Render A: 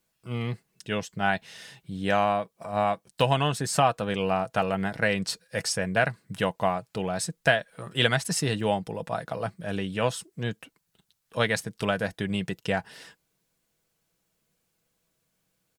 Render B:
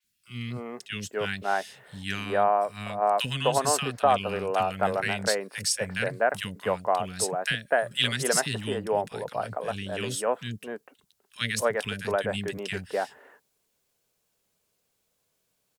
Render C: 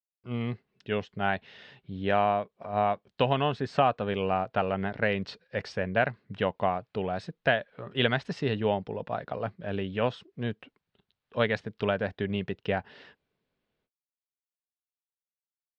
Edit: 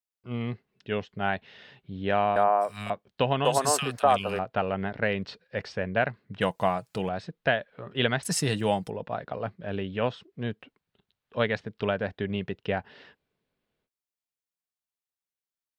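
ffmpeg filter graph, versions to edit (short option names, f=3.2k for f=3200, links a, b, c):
-filter_complex "[1:a]asplit=2[a][b];[0:a]asplit=2[c][d];[2:a]asplit=5[e][f][g][h][i];[e]atrim=end=2.362[j];[a]atrim=start=2.358:end=2.902[k];[f]atrim=start=2.898:end=3.452[l];[b]atrim=start=3.448:end=4.392[m];[g]atrim=start=4.388:end=6.412[n];[c]atrim=start=6.408:end=7.092[o];[h]atrim=start=7.088:end=8.232[p];[d]atrim=start=8.228:end=8.902[q];[i]atrim=start=8.898[r];[j][k]acrossfade=d=0.004:c1=hsin:c2=hsin[s];[s][l]acrossfade=d=0.004:c1=hsin:c2=hsin[t];[t][m]acrossfade=d=0.004:c1=hsin:c2=hsin[u];[u][n]acrossfade=d=0.004:c1=hsin:c2=hsin[v];[v][o]acrossfade=d=0.004:c1=hsin:c2=hsin[w];[w][p]acrossfade=d=0.004:c1=hsin:c2=hsin[x];[x][q]acrossfade=d=0.004:c1=hsin:c2=hsin[y];[y][r]acrossfade=d=0.004:c1=hsin:c2=hsin"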